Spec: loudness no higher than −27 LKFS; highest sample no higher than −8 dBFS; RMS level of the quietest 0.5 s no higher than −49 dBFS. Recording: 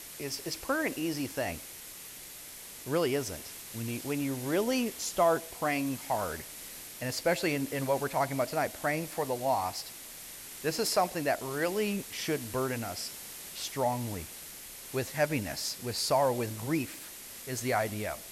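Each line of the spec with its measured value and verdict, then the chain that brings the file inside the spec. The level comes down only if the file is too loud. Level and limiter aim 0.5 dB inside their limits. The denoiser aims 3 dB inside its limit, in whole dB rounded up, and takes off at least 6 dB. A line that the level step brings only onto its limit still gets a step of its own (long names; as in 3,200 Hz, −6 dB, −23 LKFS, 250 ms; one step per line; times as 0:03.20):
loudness −32.0 LKFS: in spec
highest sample −13.5 dBFS: in spec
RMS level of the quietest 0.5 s −46 dBFS: out of spec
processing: broadband denoise 6 dB, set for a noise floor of −46 dBFS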